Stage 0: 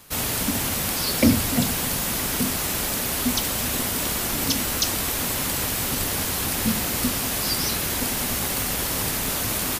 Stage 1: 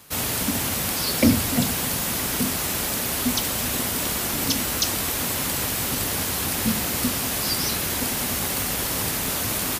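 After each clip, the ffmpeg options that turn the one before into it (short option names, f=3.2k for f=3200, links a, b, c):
-af "highpass=50"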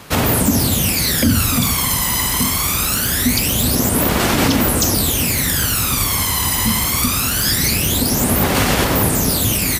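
-af "aphaser=in_gain=1:out_gain=1:delay=1:decay=0.68:speed=0.23:type=sinusoidal,alimiter=level_in=8.5dB:limit=-1dB:release=50:level=0:latency=1,volume=-3.5dB"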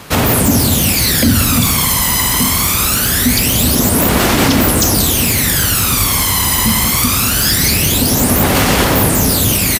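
-filter_complex "[0:a]acontrast=53,acrusher=bits=10:mix=0:aa=0.000001,asplit=2[a][b];[b]aecho=0:1:184:0.355[c];[a][c]amix=inputs=2:normalize=0,volume=-1.5dB"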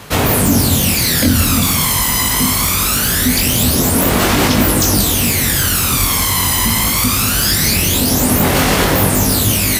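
-af "areverse,acompressor=mode=upward:threshold=-14dB:ratio=2.5,areverse,flanger=delay=19.5:depth=4.3:speed=0.42,volume=2dB"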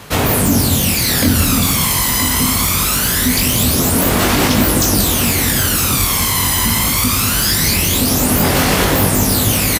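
-af "aecho=1:1:970:0.316,volume=-1dB"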